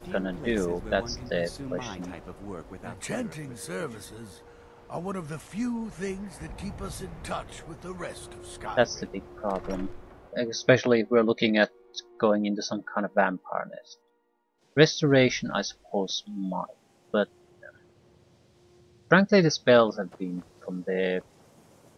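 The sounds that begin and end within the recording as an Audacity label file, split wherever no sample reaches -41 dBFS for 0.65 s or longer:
14.770000	17.690000	sound
19.110000	21.210000	sound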